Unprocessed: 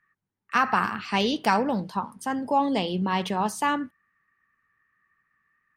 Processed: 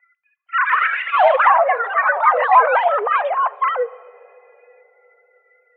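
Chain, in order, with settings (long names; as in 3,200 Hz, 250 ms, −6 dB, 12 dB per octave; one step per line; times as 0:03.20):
three sine waves on the formant tracks
parametric band 580 Hz +10.5 dB 1.2 octaves
in parallel at −1.5 dB: brickwall limiter −14.5 dBFS, peak gain reduction 12 dB
0:00.68–0:01.49: on the sum: log-companded quantiser 4 bits
delay with pitch and tempo change per echo 235 ms, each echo +4 semitones, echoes 3
on a send at −20 dB: convolution reverb RT60 3.2 s, pre-delay 4 ms
on the sum: single-sideband voice off tune +200 Hz 250–2,500 Hz
level −2 dB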